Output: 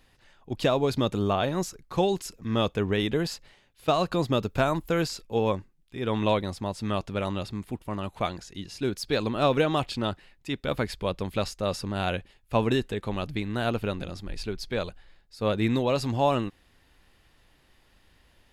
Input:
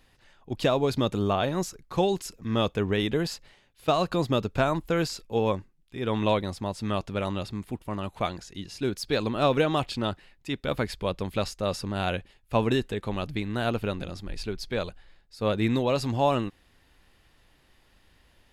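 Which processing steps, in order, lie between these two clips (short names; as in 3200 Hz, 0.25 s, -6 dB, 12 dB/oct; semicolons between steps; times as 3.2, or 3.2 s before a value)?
4.43–5.01 high shelf 12000 Hz +11 dB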